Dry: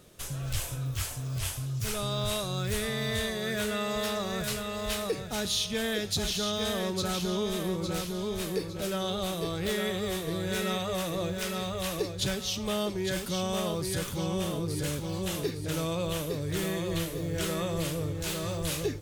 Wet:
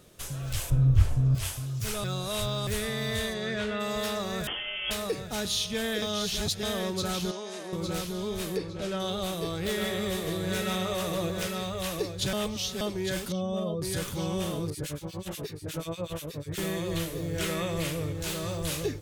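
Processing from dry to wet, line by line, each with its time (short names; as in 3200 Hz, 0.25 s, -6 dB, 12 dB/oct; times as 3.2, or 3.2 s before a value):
0.7–1.35 tilt -4 dB/oct
2.04–2.67 reverse
3.33–3.79 LPF 7600 Hz -> 3000 Hz
4.47–4.91 inverted band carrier 3300 Hz
6.02–6.63 reverse
7.31–7.73 speaker cabinet 450–8800 Hz, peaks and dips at 460 Hz -8 dB, 1200 Hz -8 dB, 2300 Hz -4 dB, 3400 Hz -10 dB, 7800 Hz -4 dB
8.57–9 air absorption 65 m
9.62–11.48 echo 0.151 s -5.5 dB
12.33–12.81 reverse
13.32–13.82 spectral contrast raised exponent 1.8
14.7–16.58 harmonic tremolo 8.3 Hz, depth 100%, crossover 1700 Hz
17.41–18.13 bell 2200 Hz +6 dB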